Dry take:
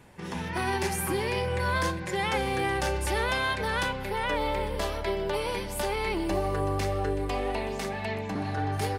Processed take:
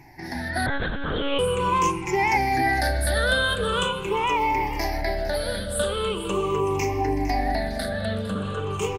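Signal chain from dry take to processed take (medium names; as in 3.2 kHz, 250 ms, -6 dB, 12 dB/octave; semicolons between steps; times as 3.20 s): drifting ripple filter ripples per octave 0.74, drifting -0.42 Hz, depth 22 dB; flange 1.4 Hz, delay 2.6 ms, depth 1.2 ms, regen -89%; on a send: frequency-shifting echo 456 ms, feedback 34%, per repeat -120 Hz, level -13.5 dB; 0.66–1.39 s: on the sum: monotone LPC vocoder at 8 kHz 280 Hz; trim +4 dB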